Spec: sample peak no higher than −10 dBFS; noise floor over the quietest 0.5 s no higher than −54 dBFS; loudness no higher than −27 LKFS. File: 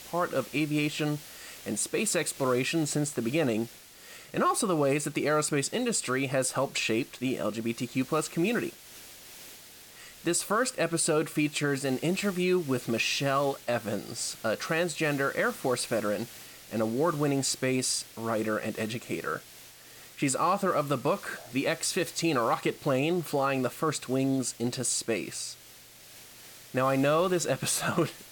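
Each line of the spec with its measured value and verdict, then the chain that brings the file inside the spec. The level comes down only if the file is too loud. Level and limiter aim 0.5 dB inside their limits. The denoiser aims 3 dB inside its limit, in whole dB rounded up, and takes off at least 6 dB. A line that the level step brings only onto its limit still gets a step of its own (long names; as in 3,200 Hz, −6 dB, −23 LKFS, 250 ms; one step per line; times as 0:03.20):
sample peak −14.0 dBFS: in spec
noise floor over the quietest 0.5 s −52 dBFS: out of spec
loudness −29.0 LKFS: in spec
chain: broadband denoise 6 dB, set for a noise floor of −52 dBFS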